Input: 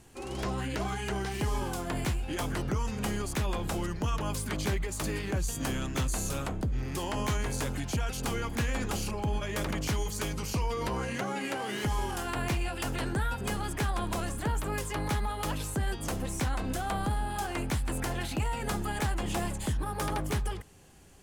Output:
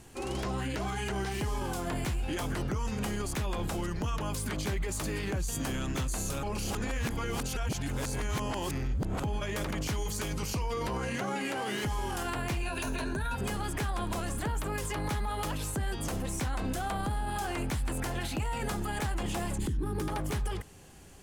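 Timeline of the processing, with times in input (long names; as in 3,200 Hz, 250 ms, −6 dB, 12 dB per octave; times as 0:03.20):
0:06.43–0:09.23: reverse
0:12.62–0:13.35: EQ curve with evenly spaced ripples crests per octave 1.5, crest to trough 11 dB
0:19.58–0:20.08: low shelf with overshoot 460 Hz +8.5 dB, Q 3
whole clip: brickwall limiter −28.5 dBFS; level +3.5 dB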